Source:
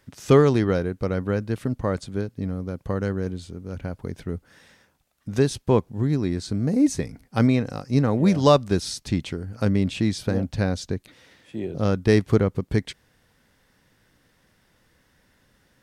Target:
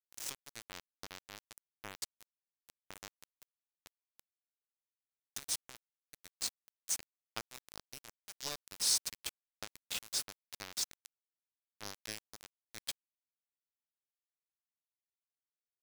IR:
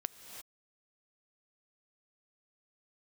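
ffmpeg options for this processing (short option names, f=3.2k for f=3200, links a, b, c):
-af "acompressor=threshold=-21dB:ratio=12,aderivative,aeval=exprs='val(0)*gte(abs(val(0)),0.0133)':c=same,volume=5dB"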